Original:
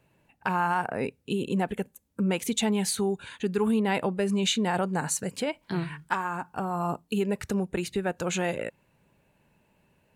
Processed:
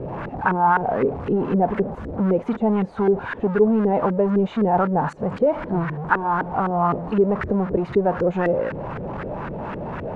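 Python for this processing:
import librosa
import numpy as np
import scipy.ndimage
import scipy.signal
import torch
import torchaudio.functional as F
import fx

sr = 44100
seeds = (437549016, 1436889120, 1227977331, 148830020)

y = x + 0.5 * 10.0 ** (-27.0 / 20.0) * np.sign(x)
y = fx.filter_lfo_lowpass(y, sr, shape='saw_up', hz=3.9, low_hz=400.0, high_hz=1600.0, q=2.4)
y = y * librosa.db_to_amplitude(2.5)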